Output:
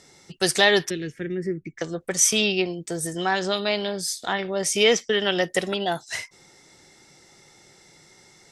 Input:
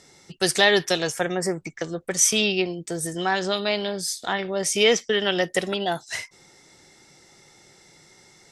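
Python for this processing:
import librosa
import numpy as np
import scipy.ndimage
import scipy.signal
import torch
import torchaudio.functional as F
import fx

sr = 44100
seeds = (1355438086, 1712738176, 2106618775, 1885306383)

y = fx.curve_eq(x, sr, hz=(370.0, 720.0, 1000.0, 1900.0, 7900.0), db=(0, -28, -28, -5, -26), at=(0.9, 1.78))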